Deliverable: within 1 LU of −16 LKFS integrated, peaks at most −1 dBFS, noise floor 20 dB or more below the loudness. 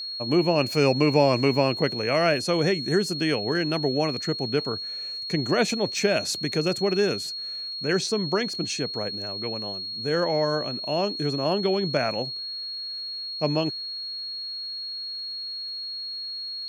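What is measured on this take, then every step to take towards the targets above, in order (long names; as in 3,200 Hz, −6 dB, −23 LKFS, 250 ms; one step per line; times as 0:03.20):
crackle rate 23 per second; interfering tone 4,300 Hz; level of the tone −31 dBFS; integrated loudness −25.5 LKFS; sample peak −6.5 dBFS; target loudness −16.0 LKFS
→ click removal
notch filter 4,300 Hz, Q 30
level +9.5 dB
brickwall limiter −1 dBFS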